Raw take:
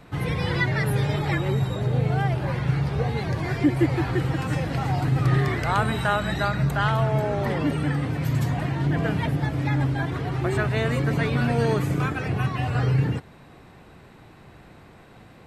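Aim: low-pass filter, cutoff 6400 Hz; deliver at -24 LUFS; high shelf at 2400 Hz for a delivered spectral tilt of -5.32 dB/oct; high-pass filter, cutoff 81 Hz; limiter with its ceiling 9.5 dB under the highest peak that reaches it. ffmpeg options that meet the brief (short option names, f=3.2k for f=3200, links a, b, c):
-af "highpass=81,lowpass=6.4k,highshelf=f=2.4k:g=7.5,volume=2dB,alimiter=limit=-15dB:level=0:latency=1"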